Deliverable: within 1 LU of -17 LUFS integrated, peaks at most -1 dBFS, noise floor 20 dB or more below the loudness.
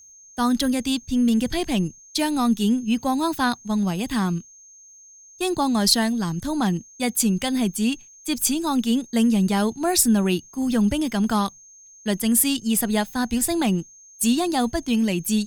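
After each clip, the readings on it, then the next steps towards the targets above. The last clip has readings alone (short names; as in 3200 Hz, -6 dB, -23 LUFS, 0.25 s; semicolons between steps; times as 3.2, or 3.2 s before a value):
steady tone 6400 Hz; tone level -46 dBFS; loudness -22.5 LUFS; peak -3.5 dBFS; loudness target -17.0 LUFS
-> notch 6400 Hz, Q 30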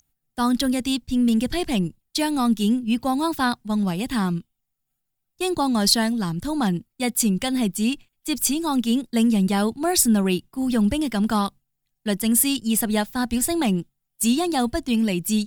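steady tone none; loudness -22.5 LUFS; peak -3.5 dBFS; loudness target -17.0 LUFS
-> gain +5.5 dB; limiter -1 dBFS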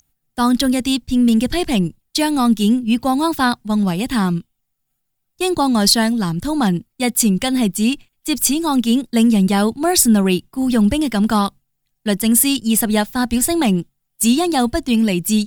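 loudness -17.0 LUFS; peak -1.0 dBFS; noise floor -73 dBFS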